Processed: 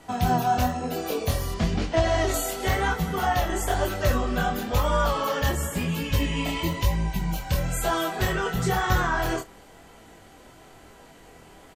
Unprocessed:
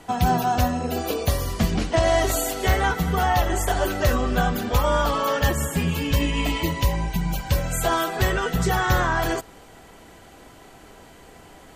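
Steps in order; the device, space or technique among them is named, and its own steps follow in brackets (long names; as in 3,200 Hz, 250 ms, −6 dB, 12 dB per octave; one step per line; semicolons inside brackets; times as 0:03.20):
double-tracked vocal (double-tracking delay 31 ms −13 dB; chorus effect 1 Hz, delay 18.5 ms, depth 7.2 ms)
0:01.54–0:02.34: low-pass filter 6,700 Hz 12 dB per octave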